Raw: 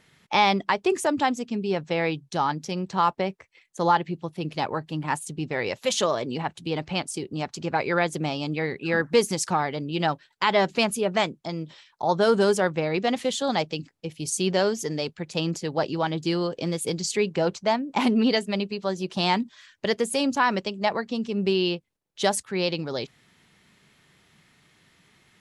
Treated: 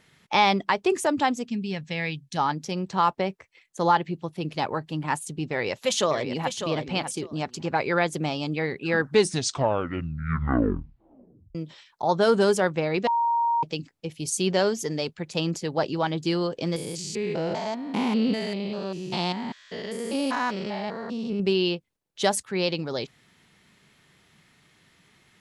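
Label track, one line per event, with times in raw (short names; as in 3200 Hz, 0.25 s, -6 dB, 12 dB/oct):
1.490000	2.380000	spectral gain 260–1600 Hz -10 dB
5.470000	6.640000	echo throw 0.6 s, feedback 15%, level -8 dB
8.940000	8.940000	tape stop 2.61 s
13.070000	13.630000	bleep 935 Hz -20 dBFS
16.760000	21.400000	stepped spectrum every 0.2 s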